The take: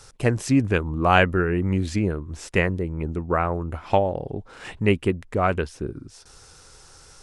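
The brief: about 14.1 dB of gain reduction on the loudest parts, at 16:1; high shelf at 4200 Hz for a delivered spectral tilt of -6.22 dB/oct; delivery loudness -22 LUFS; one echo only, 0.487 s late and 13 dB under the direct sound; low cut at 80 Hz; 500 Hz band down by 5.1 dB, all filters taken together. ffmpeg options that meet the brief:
-af "highpass=80,equalizer=f=500:t=o:g=-6.5,highshelf=f=4.2k:g=-8.5,acompressor=threshold=-29dB:ratio=16,aecho=1:1:487:0.224,volume=13.5dB"

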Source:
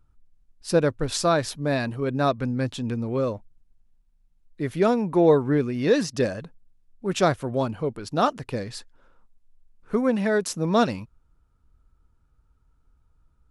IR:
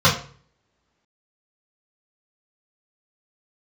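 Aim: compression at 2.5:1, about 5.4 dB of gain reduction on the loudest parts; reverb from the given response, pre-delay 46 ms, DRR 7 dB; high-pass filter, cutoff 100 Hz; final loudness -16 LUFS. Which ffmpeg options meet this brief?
-filter_complex "[0:a]highpass=100,acompressor=threshold=-21dB:ratio=2.5,asplit=2[a][b];[1:a]atrim=start_sample=2205,adelay=46[c];[b][c]afir=irnorm=-1:irlink=0,volume=-29dB[d];[a][d]amix=inputs=2:normalize=0,volume=9.5dB"

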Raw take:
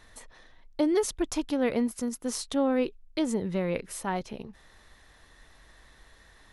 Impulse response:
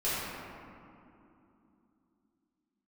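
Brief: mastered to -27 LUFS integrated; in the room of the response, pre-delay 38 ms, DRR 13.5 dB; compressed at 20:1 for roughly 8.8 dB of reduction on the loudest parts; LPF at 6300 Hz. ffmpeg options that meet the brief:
-filter_complex "[0:a]lowpass=6.3k,acompressor=threshold=-29dB:ratio=20,asplit=2[a][b];[1:a]atrim=start_sample=2205,adelay=38[c];[b][c]afir=irnorm=-1:irlink=0,volume=-23dB[d];[a][d]amix=inputs=2:normalize=0,volume=8.5dB"

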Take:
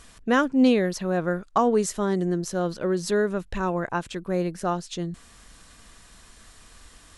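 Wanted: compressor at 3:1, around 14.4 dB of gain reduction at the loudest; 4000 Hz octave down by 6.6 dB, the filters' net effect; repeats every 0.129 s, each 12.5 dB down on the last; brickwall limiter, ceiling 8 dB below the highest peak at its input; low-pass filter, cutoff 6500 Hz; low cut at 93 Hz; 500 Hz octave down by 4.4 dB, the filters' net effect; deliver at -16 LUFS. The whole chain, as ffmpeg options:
-af "highpass=93,lowpass=6.5k,equalizer=f=500:t=o:g=-5.5,equalizer=f=4k:t=o:g=-8.5,acompressor=threshold=-36dB:ratio=3,alimiter=level_in=5dB:limit=-24dB:level=0:latency=1,volume=-5dB,aecho=1:1:129|258|387:0.237|0.0569|0.0137,volume=23dB"

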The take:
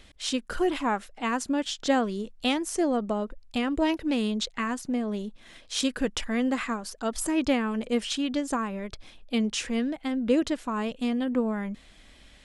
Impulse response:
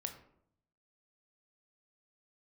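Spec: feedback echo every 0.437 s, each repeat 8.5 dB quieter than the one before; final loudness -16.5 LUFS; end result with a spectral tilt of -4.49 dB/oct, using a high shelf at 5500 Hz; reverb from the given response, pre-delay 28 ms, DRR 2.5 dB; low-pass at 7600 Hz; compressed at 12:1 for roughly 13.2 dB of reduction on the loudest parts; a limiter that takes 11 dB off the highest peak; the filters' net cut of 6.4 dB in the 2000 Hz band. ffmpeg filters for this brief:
-filter_complex "[0:a]lowpass=7.6k,equalizer=f=2k:t=o:g=-7.5,highshelf=f=5.5k:g=-6.5,acompressor=threshold=-32dB:ratio=12,alimiter=level_in=9.5dB:limit=-24dB:level=0:latency=1,volume=-9.5dB,aecho=1:1:437|874|1311|1748:0.376|0.143|0.0543|0.0206,asplit=2[a][b];[1:a]atrim=start_sample=2205,adelay=28[c];[b][c]afir=irnorm=-1:irlink=0,volume=-1dB[d];[a][d]amix=inputs=2:normalize=0,volume=22.5dB"

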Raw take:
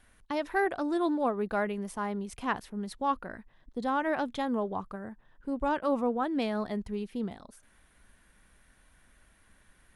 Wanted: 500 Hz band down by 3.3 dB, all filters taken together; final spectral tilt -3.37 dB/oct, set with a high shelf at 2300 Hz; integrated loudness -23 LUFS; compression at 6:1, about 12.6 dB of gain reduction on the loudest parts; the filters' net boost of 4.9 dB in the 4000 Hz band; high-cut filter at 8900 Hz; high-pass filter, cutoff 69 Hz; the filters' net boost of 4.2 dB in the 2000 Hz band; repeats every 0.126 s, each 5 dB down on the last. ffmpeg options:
-af "highpass=69,lowpass=8.9k,equalizer=f=500:t=o:g=-4.5,equalizer=f=2k:t=o:g=6.5,highshelf=f=2.3k:g=-4.5,equalizer=f=4k:t=o:g=8,acompressor=threshold=-37dB:ratio=6,aecho=1:1:126|252|378|504|630|756|882:0.562|0.315|0.176|0.0988|0.0553|0.031|0.0173,volume=17dB"

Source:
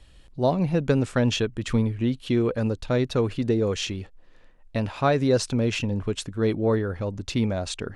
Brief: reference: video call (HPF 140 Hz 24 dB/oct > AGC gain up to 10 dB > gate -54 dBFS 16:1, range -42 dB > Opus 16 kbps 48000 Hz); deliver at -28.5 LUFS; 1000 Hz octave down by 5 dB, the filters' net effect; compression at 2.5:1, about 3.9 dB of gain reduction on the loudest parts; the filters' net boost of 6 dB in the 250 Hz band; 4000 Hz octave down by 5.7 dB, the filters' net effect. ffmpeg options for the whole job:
-af "equalizer=f=250:t=o:g=7.5,equalizer=f=1k:t=o:g=-8,equalizer=f=4k:t=o:g=-7,acompressor=threshold=-19dB:ratio=2.5,highpass=f=140:w=0.5412,highpass=f=140:w=1.3066,dynaudnorm=m=10dB,agate=range=-42dB:threshold=-54dB:ratio=16,volume=-3dB" -ar 48000 -c:a libopus -b:a 16k

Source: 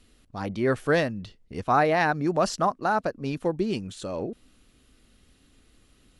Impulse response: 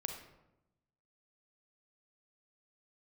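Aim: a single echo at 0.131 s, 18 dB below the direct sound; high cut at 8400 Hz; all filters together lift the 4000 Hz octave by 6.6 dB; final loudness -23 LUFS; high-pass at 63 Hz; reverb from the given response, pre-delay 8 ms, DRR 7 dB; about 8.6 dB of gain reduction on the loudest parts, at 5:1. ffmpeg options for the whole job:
-filter_complex "[0:a]highpass=63,lowpass=8.4k,equalizer=f=4k:t=o:g=8.5,acompressor=threshold=-27dB:ratio=5,aecho=1:1:131:0.126,asplit=2[a][b];[1:a]atrim=start_sample=2205,adelay=8[c];[b][c]afir=irnorm=-1:irlink=0,volume=-6.5dB[d];[a][d]amix=inputs=2:normalize=0,volume=8.5dB"

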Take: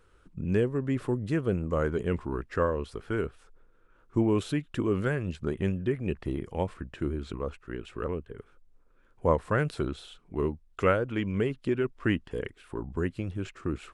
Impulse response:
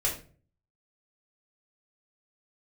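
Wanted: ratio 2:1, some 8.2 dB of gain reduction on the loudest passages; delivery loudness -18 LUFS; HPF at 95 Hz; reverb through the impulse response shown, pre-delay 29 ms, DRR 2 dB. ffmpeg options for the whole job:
-filter_complex "[0:a]highpass=95,acompressor=threshold=-33dB:ratio=2,asplit=2[a][b];[1:a]atrim=start_sample=2205,adelay=29[c];[b][c]afir=irnorm=-1:irlink=0,volume=-9.5dB[d];[a][d]amix=inputs=2:normalize=0,volume=15.5dB"

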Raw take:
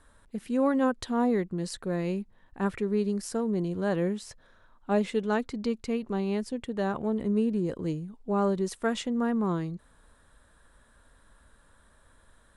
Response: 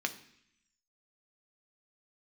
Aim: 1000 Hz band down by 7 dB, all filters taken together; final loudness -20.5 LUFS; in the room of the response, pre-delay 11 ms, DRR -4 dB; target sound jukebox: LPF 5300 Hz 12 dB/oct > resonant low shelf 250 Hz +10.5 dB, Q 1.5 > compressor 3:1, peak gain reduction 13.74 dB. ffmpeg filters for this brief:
-filter_complex "[0:a]equalizer=f=1k:t=o:g=-8.5,asplit=2[a][b];[1:a]atrim=start_sample=2205,adelay=11[c];[b][c]afir=irnorm=-1:irlink=0,volume=-0.5dB[d];[a][d]amix=inputs=2:normalize=0,lowpass=5.3k,lowshelf=f=250:t=q:w=1.5:g=10.5,acompressor=threshold=-25dB:ratio=3,volume=5.5dB"

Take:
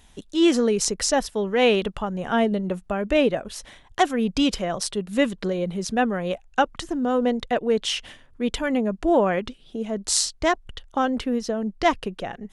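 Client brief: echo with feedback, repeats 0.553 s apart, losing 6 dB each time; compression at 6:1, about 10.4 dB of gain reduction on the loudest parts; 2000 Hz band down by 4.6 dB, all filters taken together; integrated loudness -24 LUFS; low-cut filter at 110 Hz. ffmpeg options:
-af "highpass=110,equalizer=f=2k:t=o:g=-6,acompressor=threshold=-26dB:ratio=6,aecho=1:1:553|1106|1659|2212|2765|3318:0.501|0.251|0.125|0.0626|0.0313|0.0157,volume=5.5dB"

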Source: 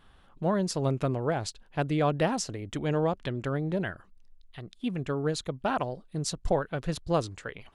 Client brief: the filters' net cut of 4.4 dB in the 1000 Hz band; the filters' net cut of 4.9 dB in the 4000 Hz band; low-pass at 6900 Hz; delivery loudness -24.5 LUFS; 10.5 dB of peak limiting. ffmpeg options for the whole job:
-af "lowpass=6.9k,equalizer=f=1k:t=o:g=-6,equalizer=f=4k:t=o:g=-5.5,volume=11.5dB,alimiter=limit=-14.5dB:level=0:latency=1"

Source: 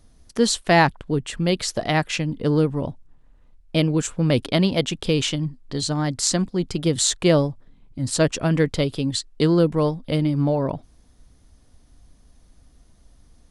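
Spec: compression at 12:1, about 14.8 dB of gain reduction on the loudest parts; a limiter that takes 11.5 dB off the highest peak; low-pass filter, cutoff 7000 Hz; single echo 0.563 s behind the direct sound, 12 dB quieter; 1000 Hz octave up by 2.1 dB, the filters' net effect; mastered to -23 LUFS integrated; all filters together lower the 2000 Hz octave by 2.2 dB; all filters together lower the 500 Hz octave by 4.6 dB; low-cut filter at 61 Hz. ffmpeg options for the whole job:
-af "highpass=61,lowpass=7k,equalizer=f=500:t=o:g=-7.5,equalizer=f=1k:t=o:g=6.5,equalizer=f=2k:t=o:g=-4,acompressor=threshold=-26dB:ratio=12,alimiter=limit=-23.5dB:level=0:latency=1,aecho=1:1:563:0.251,volume=10.5dB"

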